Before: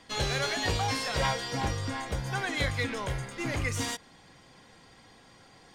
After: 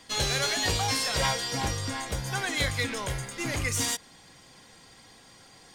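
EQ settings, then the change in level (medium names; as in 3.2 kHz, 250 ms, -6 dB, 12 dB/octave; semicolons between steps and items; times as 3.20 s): treble shelf 4.6 kHz +11.5 dB; 0.0 dB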